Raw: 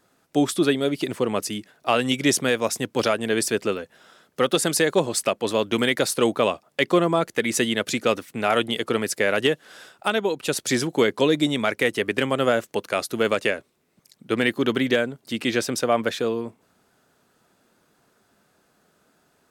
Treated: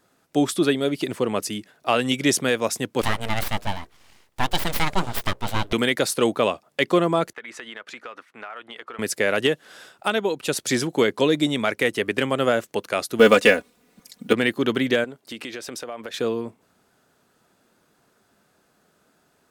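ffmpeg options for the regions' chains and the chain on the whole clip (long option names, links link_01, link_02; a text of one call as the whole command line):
ffmpeg -i in.wav -filter_complex "[0:a]asettb=1/sr,asplit=3[link_01][link_02][link_03];[link_01]atrim=end=3.014[link_04];[link_02]atrim=start=3.01:end=5.73,asetpts=PTS-STARTPTS,afade=type=in:duration=0.004:curve=qsin,afade=type=out:start_time=2.716:duration=0.004:curve=qsin,bandreject=frequency=60:width_type=h:width=6,bandreject=frequency=120:width_type=h:width=6,bandreject=frequency=180:width_type=h:width=6,bandreject=frequency=240:width_type=h:width=6,bandreject=frequency=300:width_type=h:width=6,aeval=exprs='abs(val(0))':channel_layout=same[link_05];[link_03]atrim=start=5.726[link_06];[link_04][link_05]acrossfade=duration=0.004:curve1=hsin:curve2=qsin[link_07];[link_07][link_06]acrossfade=duration=0.004:curve1=qsin:curve2=hsin,asettb=1/sr,asplit=3[link_08][link_09][link_10];[link_08]atrim=end=7.334[link_11];[link_09]atrim=start=7.33:end=8.99,asetpts=PTS-STARTPTS,afade=type=in:duration=0.004:curve=qsin,afade=type=out:start_time=1.656:duration=0.004:curve=qsin,bandpass=frequency=1300:width_type=q:width=1.5,acompressor=threshold=-32dB:ratio=10:attack=3.2:release=140:knee=1:detection=peak[link_12];[link_10]atrim=start=8.986[link_13];[link_11][link_12]acrossfade=duration=0.004:curve1=hsin:curve2=qsin[link_14];[link_14][link_13]acrossfade=duration=0.004:curve1=qsin:curve2=hsin,asettb=1/sr,asplit=3[link_15][link_16][link_17];[link_15]atrim=end=13.194[link_18];[link_16]atrim=start=13.19:end=14.33,asetpts=PTS-STARTPTS,afade=type=in:duration=0.004:curve=qsin,afade=type=out:start_time=1.136:duration=0.004:curve=qsin,acrusher=bits=8:mode=log:mix=0:aa=0.000001,aecho=1:1:4.1:0.73,atrim=end_sample=50274,acontrast=75[link_19];[link_17]atrim=start=14.326[link_20];[link_18][link_19]acrossfade=duration=0.004:curve1=hsin:curve2=qsin[link_21];[link_21][link_20]acrossfade=duration=0.004:curve1=qsin:curve2=hsin,asettb=1/sr,asplit=3[link_22][link_23][link_24];[link_22]atrim=end=15.044[link_25];[link_23]atrim=start=15.04:end=16.14,asetpts=PTS-STARTPTS,afade=type=in:duration=0.004:curve=qsin,afade=type=out:start_time=1.096:duration=0.004:curve=qsin,bass=frequency=250:gain=-9,treble=frequency=4000:gain=-2,acompressor=threshold=-30dB:ratio=6:attack=3.2:release=140:knee=1:detection=peak[link_26];[link_24]atrim=start=16.136[link_27];[link_25][link_26]acrossfade=duration=0.004:curve1=hsin:curve2=qsin[link_28];[link_28][link_27]acrossfade=duration=0.004:curve1=qsin:curve2=hsin" out.wav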